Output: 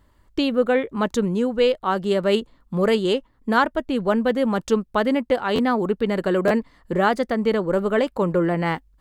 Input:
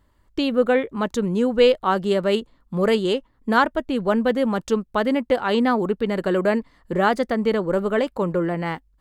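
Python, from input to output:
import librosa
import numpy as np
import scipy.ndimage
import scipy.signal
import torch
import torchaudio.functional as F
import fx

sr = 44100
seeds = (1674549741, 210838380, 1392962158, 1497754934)

y = fx.rider(x, sr, range_db=4, speed_s=0.5)
y = fx.buffer_glitch(y, sr, at_s=(5.55, 6.47), block=512, repeats=2)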